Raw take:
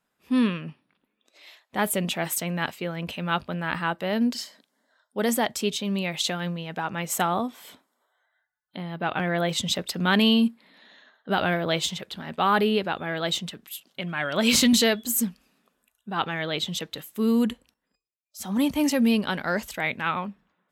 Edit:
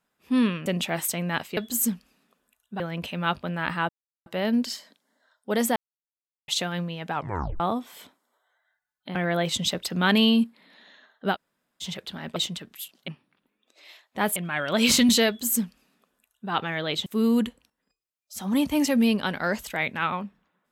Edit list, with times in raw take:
0.66–1.94 s: move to 14.00 s
3.94 s: insert silence 0.37 s
5.44–6.16 s: mute
6.82 s: tape stop 0.46 s
8.83–9.19 s: delete
11.38–11.87 s: room tone, crossfade 0.06 s
12.40–13.28 s: delete
14.92–16.15 s: copy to 2.85 s
16.70–17.10 s: delete

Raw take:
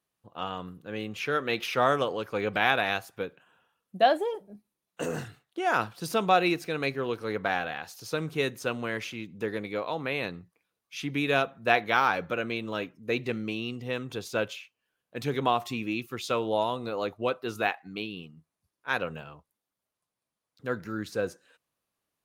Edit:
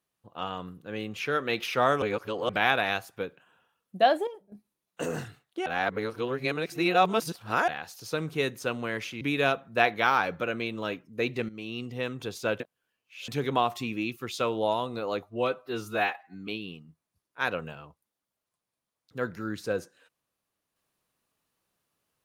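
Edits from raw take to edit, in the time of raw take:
2.02–2.49 s: reverse
4.27–4.52 s: gain -9.5 dB
5.66–7.68 s: reverse
9.21–11.11 s: delete
13.39–13.74 s: fade in, from -14 dB
14.50–15.18 s: reverse
17.13–17.96 s: stretch 1.5×

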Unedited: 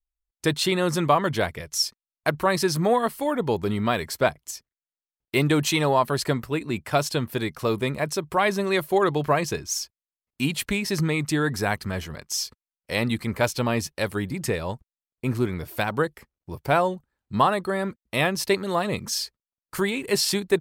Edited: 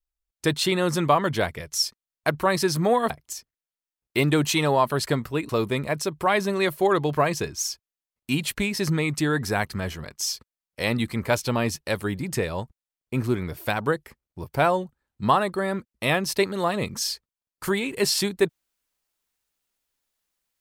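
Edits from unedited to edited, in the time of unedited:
3.10–4.28 s: delete
6.67–7.60 s: delete

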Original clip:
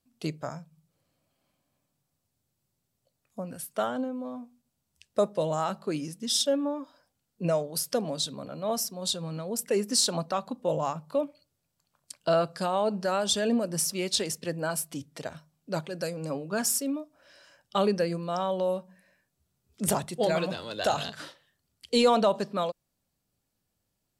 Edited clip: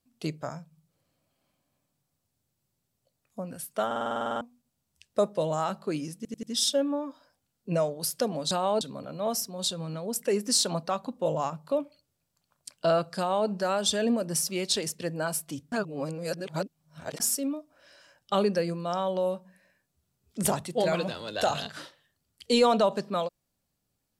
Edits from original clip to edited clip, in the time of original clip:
3.86 s: stutter in place 0.05 s, 11 plays
6.16 s: stutter 0.09 s, 4 plays
12.61–12.91 s: copy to 8.24 s
15.15–16.63 s: reverse

